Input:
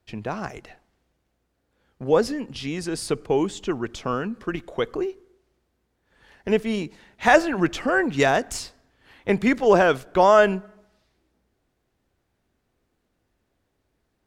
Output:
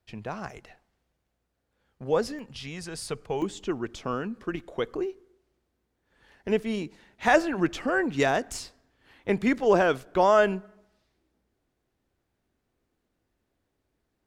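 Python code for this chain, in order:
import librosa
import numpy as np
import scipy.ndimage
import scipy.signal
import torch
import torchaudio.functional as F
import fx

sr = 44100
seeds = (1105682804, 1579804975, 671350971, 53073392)

y = fx.peak_eq(x, sr, hz=310.0, db=fx.steps((0.0, -3.5), (2.39, -10.0), (3.42, 2.0)), octaves=0.77)
y = y * 10.0 ** (-5.0 / 20.0)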